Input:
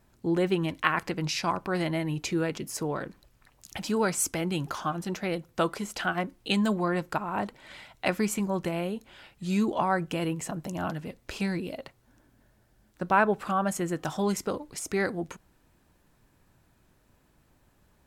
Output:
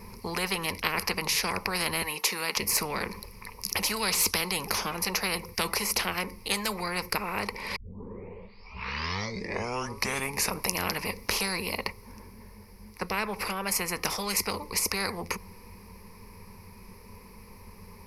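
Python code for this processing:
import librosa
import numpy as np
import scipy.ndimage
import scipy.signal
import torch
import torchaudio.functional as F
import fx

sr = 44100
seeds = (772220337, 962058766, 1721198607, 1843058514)

y = fx.highpass(x, sr, hz=780.0, slope=12, at=(2.02, 2.57))
y = fx.peak_eq(y, sr, hz=3900.0, db=10.0, octaves=0.77, at=(3.96, 4.52))
y = fx.edit(y, sr, fx.tape_start(start_s=7.76, length_s=2.99), tone=tone)
y = fx.ripple_eq(y, sr, per_octave=0.86, db=18)
y = fx.rider(y, sr, range_db=10, speed_s=2.0)
y = fx.spectral_comp(y, sr, ratio=4.0)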